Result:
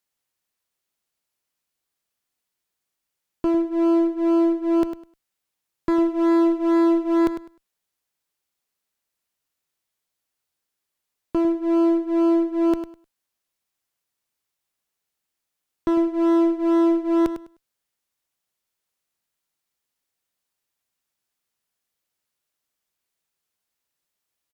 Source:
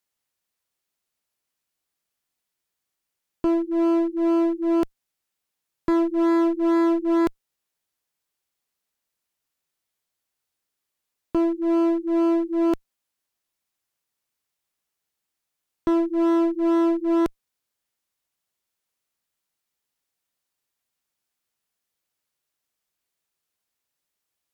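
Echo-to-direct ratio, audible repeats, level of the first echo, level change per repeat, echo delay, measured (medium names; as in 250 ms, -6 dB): -10.5 dB, 2, -10.5 dB, -14.0 dB, 102 ms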